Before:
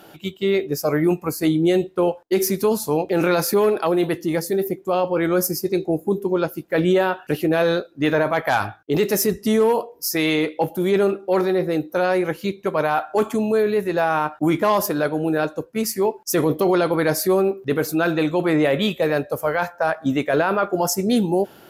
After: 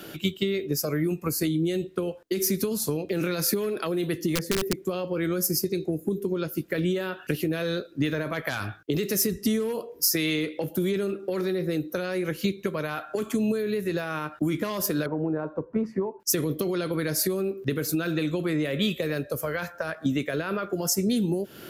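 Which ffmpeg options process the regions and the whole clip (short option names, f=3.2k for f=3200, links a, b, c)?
-filter_complex "[0:a]asettb=1/sr,asplit=3[a][b][c];[a]atrim=end=4.354[d];[b]atrim=start=4.35:end=4.75,asetpts=PTS-STARTPTS,afade=t=in:d=0.004:c=qsin,afade=t=out:st=0.396:d=0.004:c=qsin,bass=f=250:g=0,treble=f=4k:g=-14,aeval=exprs='(mod(5.31*val(0)+1,2)-1)/5.31':c=same[e];[c]atrim=start=4.746[f];[d][e]acrossfade=d=0.004:c1=hsin:c2=qsin[g];[g][f]acrossfade=d=0.004:c1=qsin:c2=hsin,asettb=1/sr,asplit=3[h][i][j];[h]atrim=end=15.064[k];[i]atrim=start=15.06:end=16.2,asetpts=PTS-STARTPTS,afade=t=in:d=0.004:c=qsin,afade=t=out:st=1.136:d=0.004:c=qsin,acompressor=mode=upward:threshold=-32dB:ratio=2.5:attack=3.2:release=140:knee=2.83:detection=peak,lowpass=f=950:t=q:w=4.2[l];[j]atrim=start=16.196[m];[k][l]acrossfade=d=0.004:c1=hsin:c2=qsin[n];[n][m]acrossfade=d=0.004:c1=qsin:c2=hsin,acompressor=threshold=-26dB:ratio=6,equalizer=f=820:w=2:g=-13.5,acrossover=split=220|3000[o][p][q];[p]acompressor=threshold=-33dB:ratio=6[r];[o][r][q]amix=inputs=3:normalize=0,volume=6.5dB"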